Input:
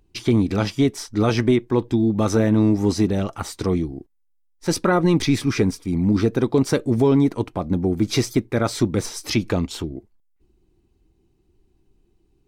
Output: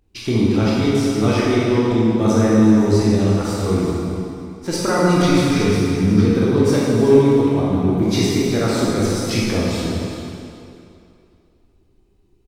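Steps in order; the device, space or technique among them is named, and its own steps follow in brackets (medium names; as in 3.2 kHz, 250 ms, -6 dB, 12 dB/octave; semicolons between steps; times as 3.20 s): cave (delay 374 ms -12 dB; reverberation RT60 2.6 s, pre-delay 18 ms, DRR -6.5 dB); trim -3.5 dB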